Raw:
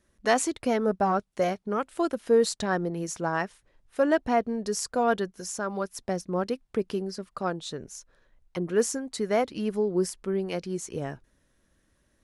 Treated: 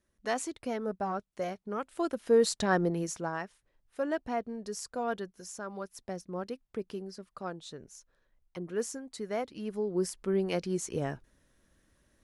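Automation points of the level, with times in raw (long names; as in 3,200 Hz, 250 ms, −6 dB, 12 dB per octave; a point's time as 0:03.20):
0:01.48 −9 dB
0:02.89 +1.5 dB
0:03.41 −9 dB
0:09.59 −9 dB
0:10.40 0 dB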